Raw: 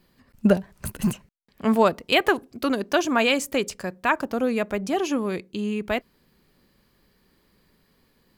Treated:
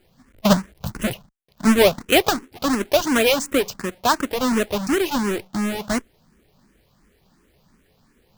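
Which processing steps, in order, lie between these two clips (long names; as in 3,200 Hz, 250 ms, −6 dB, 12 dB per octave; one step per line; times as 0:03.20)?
each half-wave held at its own peak
frequency shifter mixed with the dry sound +2.8 Hz
level +1.5 dB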